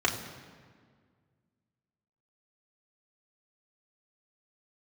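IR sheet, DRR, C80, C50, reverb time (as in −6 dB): −2.0 dB, 9.5 dB, 8.5 dB, 1.8 s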